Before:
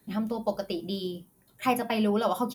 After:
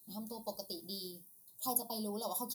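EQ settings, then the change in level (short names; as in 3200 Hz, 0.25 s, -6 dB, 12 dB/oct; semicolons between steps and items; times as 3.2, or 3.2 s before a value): elliptic band-stop 1000–4000 Hz, stop band 60 dB; pre-emphasis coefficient 0.9; +4.5 dB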